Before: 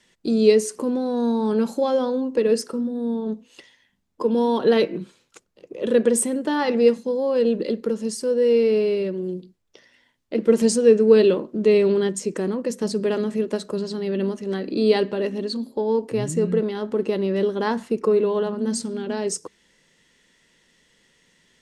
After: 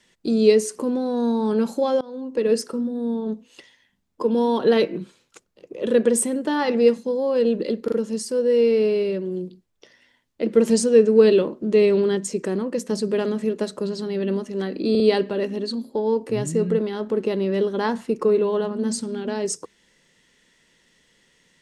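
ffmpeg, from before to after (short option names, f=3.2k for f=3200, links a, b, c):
-filter_complex "[0:a]asplit=6[a][b][c][d][e][f];[a]atrim=end=2.01,asetpts=PTS-STARTPTS,afade=t=out:st=2.006:d=0.004:c=hsin:silence=0.0668344[g];[b]atrim=start=2.01:end=7.882,asetpts=PTS-STARTPTS,afade=t=in:d=0.51:silence=0.0668344[h];[c]atrim=start=7.838:end=7.882[i];[d]atrim=start=7.838:end=14.872[j];[e]atrim=start=14.818:end=14.872[k];[f]atrim=start=14.818[l];[g][h]concat=n=2:v=0:a=1[m];[m][i]acrossfade=d=0.004:c1=hsin:c2=hsin[n];[n][j]acrossfade=d=0.004:c1=hsin:c2=hsin[o];[o][k]acrossfade=d=0.004:c1=hsin:c2=hsin[p];[p][l]acrossfade=d=0.004:c1=hsin:c2=hsin"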